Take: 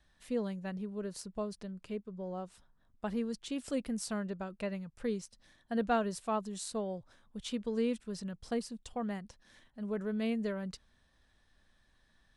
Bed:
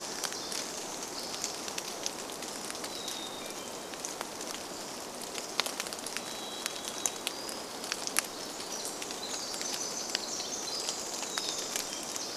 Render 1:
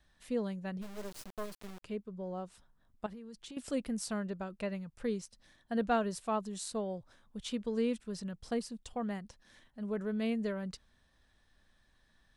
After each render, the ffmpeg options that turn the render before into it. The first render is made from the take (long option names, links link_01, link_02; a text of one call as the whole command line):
ffmpeg -i in.wav -filter_complex "[0:a]asplit=3[link_01][link_02][link_03];[link_01]afade=type=out:start_time=0.81:duration=0.02[link_04];[link_02]acrusher=bits=5:dc=4:mix=0:aa=0.000001,afade=type=in:start_time=0.81:duration=0.02,afade=type=out:start_time=1.82:duration=0.02[link_05];[link_03]afade=type=in:start_time=1.82:duration=0.02[link_06];[link_04][link_05][link_06]amix=inputs=3:normalize=0,asettb=1/sr,asplit=3[link_07][link_08][link_09];[link_07]atrim=end=3.064[link_10];[link_08]atrim=start=3.06:end=3.57,asetpts=PTS-STARTPTS,afade=type=in:duration=0.004:curve=qsin,afade=type=out:start_time=0.506:duration=0.004:curve=qsin,acompressor=threshold=-44dB:ratio=12:attack=3.2:release=140:knee=1:detection=peak[link_11];[link_09]atrim=start=3.566[link_12];[link_10][link_11]acrossfade=duration=0.004:curve1=hsin:curve2=qsin[link_13];[link_13][link_12]acrossfade=duration=0.004:curve1=qsin:curve2=hsin" out.wav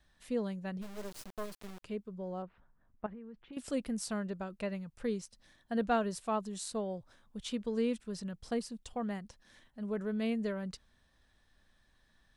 ffmpeg -i in.wav -filter_complex "[0:a]asettb=1/sr,asplit=3[link_01][link_02][link_03];[link_01]atrim=end=2.424[link_04];[link_02]atrim=start=2.42:end=3.53,asetpts=PTS-STARTPTS,afade=type=in:duration=0.004:curve=qsin,afade=type=out:start_time=1.106:duration=0.004:curve=qsin,lowpass=frequency=2300:width=0.5412,lowpass=frequency=2300:width=1.3066[link_05];[link_03]atrim=start=3.526[link_06];[link_04][link_05]acrossfade=duration=0.004:curve1=hsin:curve2=qsin[link_07];[link_07][link_06]acrossfade=duration=0.004:curve1=qsin:curve2=hsin" out.wav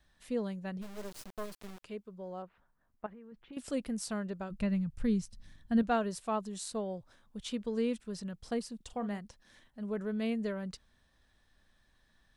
ffmpeg -i in.wav -filter_complex "[0:a]asettb=1/sr,asplit=3[link_01][link_02][link_03];[link_01]atrim=end=1.764[link_04];[link_02]atrim=start=1.76:end=3.32,asetpts=PTS-STARTPTS,afade=type=in:duration=0.004:curve=qsin,afade=type=out:start_time=1.556:duration=0.004:curve=qsin,lowshelf=frequency=290:gain=-7.5[link_05];[link_03]atrim=start=3.316[link_06];[link_04][link_05]acrossfade=duration=0.004:curve1=hsin:curve2=qsin[link_07];[link_07][link_06]acrossfade=duration=0.004:curve1=qsin:curve2=hsin,asplit=3[link_08][link_09][link_10];[link_08]afade=type=out:start_time=4.5:duration=0.02[link_11];[link_09]asubboost=boost=7.5:cutoff=180,afade=type=in:start_time=4.5:duration=0.02,afade=type=out:start_time=5.81:duration=0.02[link_12];[link_10]afade=type=in:start_time=5.81:duration=0.02[link_13];[link_11][link_12][link_13]amix=inputs=3:normalize=0,asettb=1/sr,asplit=3[link_14][link_15][link_16];[link_14]atrim=end=8.764[link_17];[link_15]atrim=start=8.76:end=9.19,asetpts=PTS-STARTPTS,afade=type=in:duration=0.004:curve=qsin,afade=type=out:start_time=0.426:duration=0.004:curve=qsin,asplit=2[link_18][link_19];[link_19]adelay=44,volume=-13dB[link_20];[link_18][link_20]amix=inputs=2:normalize=0,atrim=end_sample=18963[link_21];[link_16]atrim=start=9.186[link_22];[link_17][link_21]acrossfade=duration=0.004:curve1=hsin:curve2=qsin[link_23];[link_23][link_22]acrossfade=duration=0.004:curve1=qsin:curve2=hsin" out.wav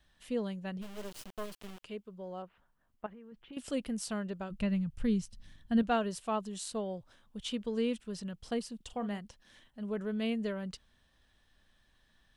ffmpeg -i in.wav -af "equalizer=frequency=3000:width_type=o:width=0.35:gain=6.5" out.wav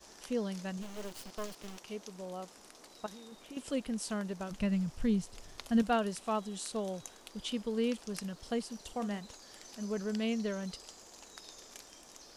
ffmpeg -i in.wav -i bed.wav -filter_complex "[1:a]volume=-17dB[link_01];[0:a][link_01]amix=inputs=2:normalize=0" out.wav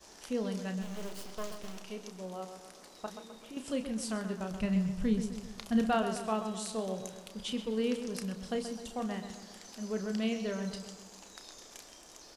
ffmpeg -i in.wav -filter_complex "[0:a]asplit=2[link_01][link_02];[link_02]adelay=32,volume=-8.5dB[link_03];[link_01][link_03]amix=inputs=2:normalize=0,asplit=2[link_04][link_05];[link_05]adelay=129,lowpass=frequency=3600:poles=1,volume=-8.5dB,asplit=2[link_06][link_07];[link_07]adelay=129,lowpass=frequency=3600:poles=1,volume=0.52,asplit=2[link_08][link_09];[link_09]adelay=129,lowpass=frequency=3600:poles=1,volume=0.52,asplit=2[link_10][link_11];[link_11]adelay=129,lowpass=frequency=3600:poles=1,volume=0.52,asplit=2[link_12][link_13];[link_13]adelay=129,lowpass=frequency=3600:poles=1,volume=0.52,asplit=2[link_14][link_15];[link_15]adelay=129,lowpass=frequency=3600:poles=1,volume=0.52[link_16];[link_06][link_08][link_10][link_12][link_14][link_16]amix=inputs=6:normalize=0[link_17];[link_04][link_17]amix=inputs=2:normalize=0" out.wav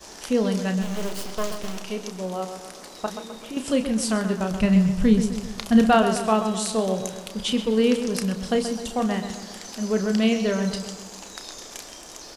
ffmpeg -i in.wav -af "volume=12dB" out.wav